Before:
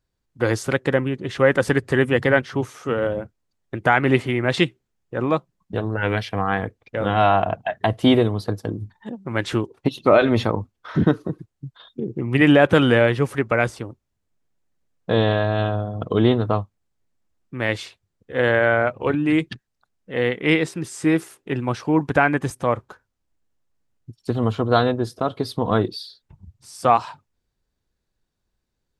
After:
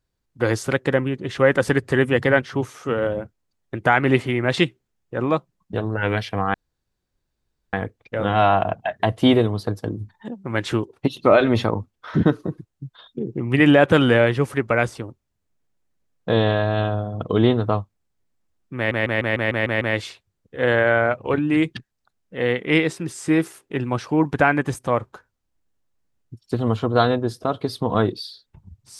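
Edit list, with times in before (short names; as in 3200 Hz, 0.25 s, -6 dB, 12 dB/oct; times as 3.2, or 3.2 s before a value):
6.54 insert room tone 1.19 s
17.57 stutter 0.15 s, 8 plays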